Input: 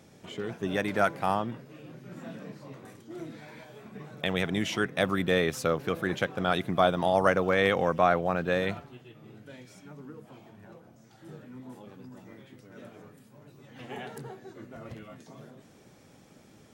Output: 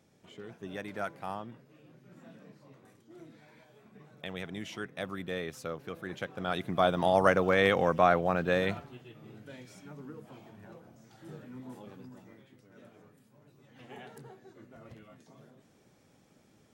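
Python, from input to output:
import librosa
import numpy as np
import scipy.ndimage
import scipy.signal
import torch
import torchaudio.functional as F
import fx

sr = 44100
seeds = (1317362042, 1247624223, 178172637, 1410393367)

y = fx.gain(x, sr, db=fx.line((6.01, -11.0), (7.06, -0.5), (11.94, -0.5), (12.49, -8.0)))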